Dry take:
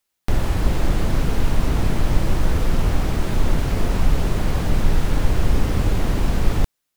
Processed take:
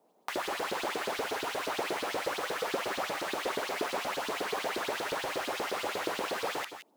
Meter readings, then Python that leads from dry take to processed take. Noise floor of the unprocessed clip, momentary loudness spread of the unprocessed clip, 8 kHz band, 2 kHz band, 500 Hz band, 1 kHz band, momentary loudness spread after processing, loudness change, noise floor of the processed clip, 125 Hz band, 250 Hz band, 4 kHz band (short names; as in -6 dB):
-77 dBFS, 2 LU, -5.0 dB, -1.5 dB, -4.5 dB, -2.0 dB, 1 LU, -10.5 dB, -67 dBFS, -34.5 dB, -16.5 dB, -2.0 dB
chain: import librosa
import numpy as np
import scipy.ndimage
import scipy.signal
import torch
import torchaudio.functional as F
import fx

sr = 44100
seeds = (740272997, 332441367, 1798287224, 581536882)

y = fx.filter_lfo_highpass(x, sr, shape='saw_up', hz=8.4, low_hz=360.0, high_hz=4300.0, q=3.3)
y = fx.echo_multitap(y, sr, ms=(45, 166, 176), db=(-19.0, -11.0, -15.5))
y = fx.dmg_noise_band(y, sr, seeds[0], low_hz=200.0, high_hz=880.0, level_db=-62.0)
y = y * 10.0 ** (-6.0 / 20.0)